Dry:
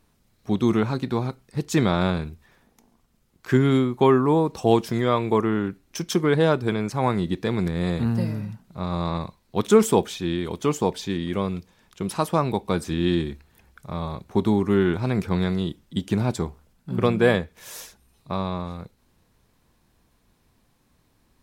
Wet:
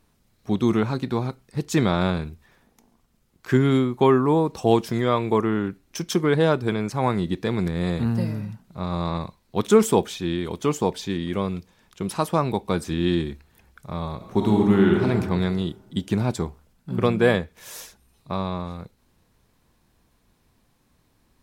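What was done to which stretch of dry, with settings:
0:14.15–0:15.06: thrown reverb, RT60 1.5 s, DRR 0.5 dB

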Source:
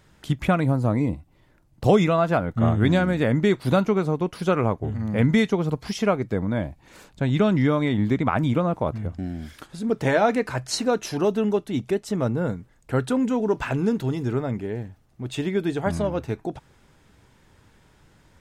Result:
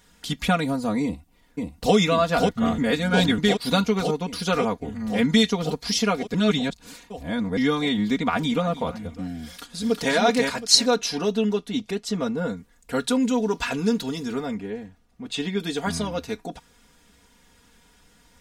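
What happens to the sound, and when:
0:01.03–0:01.94: delay throw 540 ms, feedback 80%, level −2.5 dB
0:02.78–0:03.38: reverse
0:06.34–0:07.57: reverse
0:08.14–0:08.66: delay throw 300 ms, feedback 45%, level −15.5 dB
0:09.44–0:10.13: delay throw 360 ms, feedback 25%, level −3 dB
0:10.96–0:12.57: high-shelf EQ 6,400 Hz −10 dB
0:14.54–0:15.60: low-pass filter 3,400 Hz 6 dB per octave
whole clip: high-shelf EQ 2,800 Hz +10 dB; comb filter 4.2 ms, depth 89%; dynamic equaliser 4,400 Hz, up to +8 dB, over −47 dBFS, Q 1.3; level −4.5 dB

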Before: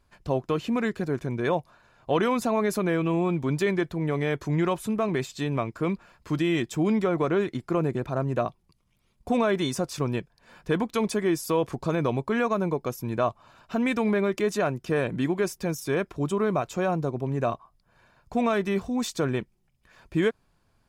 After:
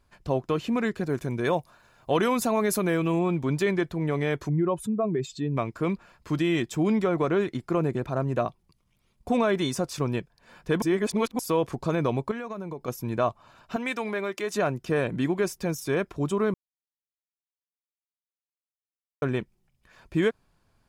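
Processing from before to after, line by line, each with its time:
0:01.09–0:03.19: high-shelf EQ 7,200 Hz +11 dB
0:04.49–0:05.57: expanding power law on the bin magnitudes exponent 1.7
0:10.82–0:11.39: reverse
0:12.31–0:12.88: downward compressor, threshold −31 dBFS
0:13.76–0:14.53: high-pass filter 670 Hz 6 dB per octave
0:16.54–0:19.22: silence

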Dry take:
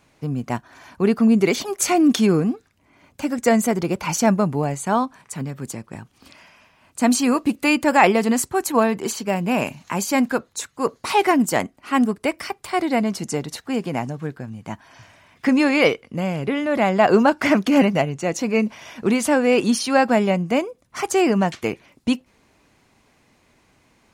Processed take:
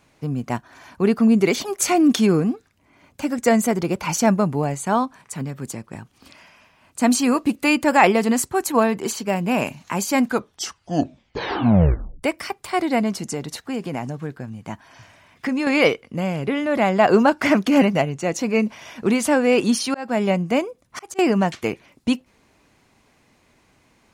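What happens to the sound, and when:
0:10.24: tape stop 1.99 s
0:13.13–0:15.67: downward compressor 2 to 1, threshold −24 dBFS
0:19.79–0:21.19: volume swells 339 ms

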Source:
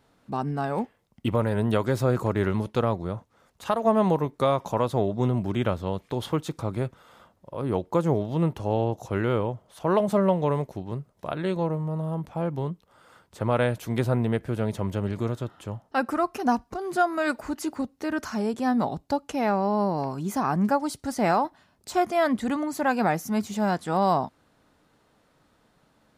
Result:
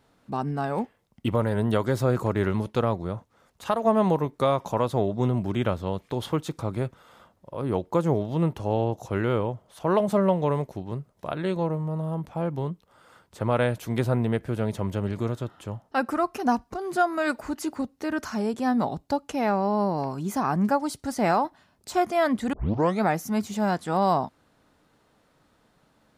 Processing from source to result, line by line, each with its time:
0:01.32–0:02.02: notch filter 2,500 Hz
0:22.53: tape start 0.51 s

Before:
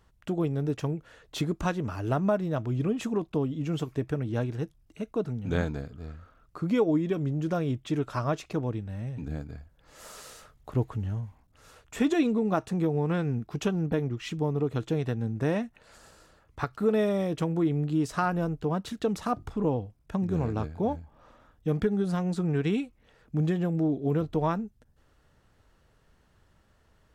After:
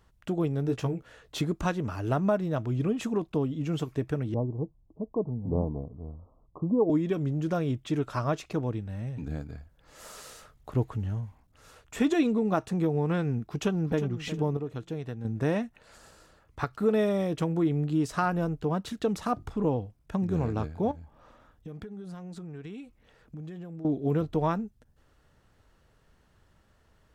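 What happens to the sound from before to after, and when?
0:00.67–0:01.36: double-tracking delay 16 ms −6 dB
0:04.34–0:06.90: Butterworth low-pass 1,100 Hz 96 dB per octave
0:13.45–0:14.06: delay throw 360 ms, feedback 35%, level −12.5 dB
0:14.57–0:15.25: clip gain −7 dB
0:20.91–0:23.85: downward compressor, threshold −39 dBFS

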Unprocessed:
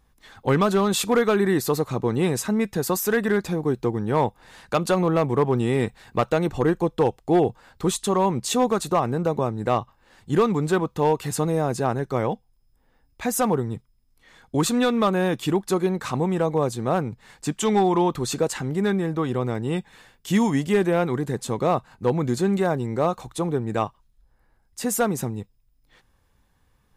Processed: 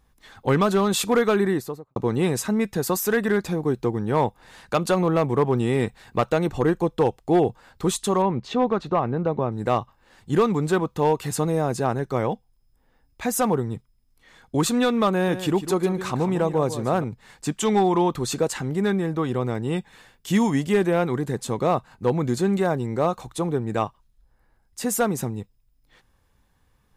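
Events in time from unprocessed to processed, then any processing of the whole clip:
0:01.35–0:01.96: fade out and dull
0:08.22–0:09.52: high-frequency loss of the air 260 metres
0:15.13–0:17.04: single-tap delay 148 ms −11.5 dB

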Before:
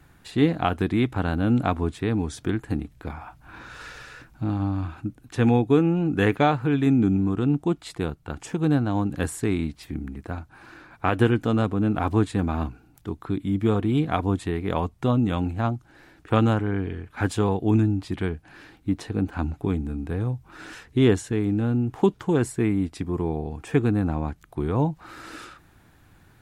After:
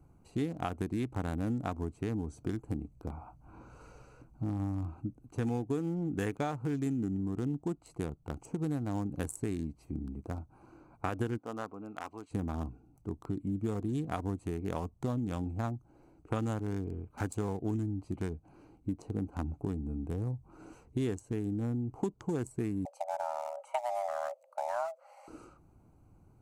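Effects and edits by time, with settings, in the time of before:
0:11.37–0:12.30: resonant band-pass 950 Hz → 3,400 Hz, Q 0.96
0:22.85–0:25.28: frequency shifter +490 Hz
whole clip: adaptive Wiener filter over 25 samples; high shelf with overshoot 5,100 Hz +12.5 dB, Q 1.5; downward compressor 4 to 1, threshold −26 dBFS; level −5 dB

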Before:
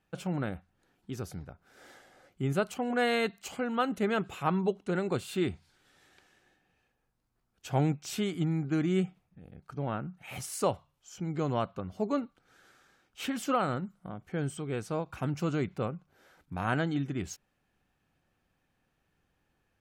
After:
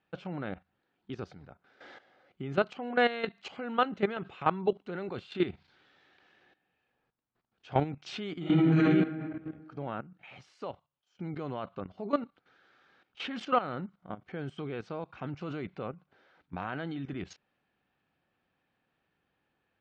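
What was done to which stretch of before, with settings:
0:08.38–0:08.84: thrown reverb, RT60 1.5 s, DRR −10 dB
0:09.78–0:11.19: fade out, to −19.5 dB
whole clip: high-pass filter 210 Hz 6 dB per octave; output level in coarse steps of 14 dB; low-pass filter 4,200 Hz 24 dB per octave; level +5.5 dB

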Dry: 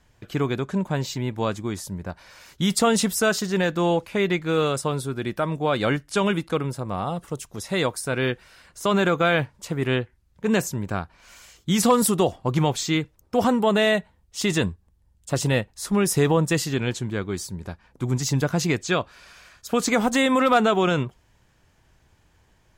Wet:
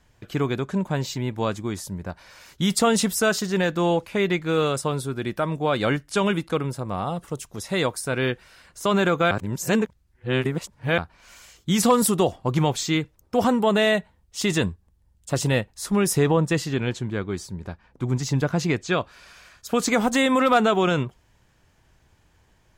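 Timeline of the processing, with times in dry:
0:09.31–0:10.98: reverse
0:16.17–0:18.98: low-pass filter 4,000 Hz 6 dB per octave

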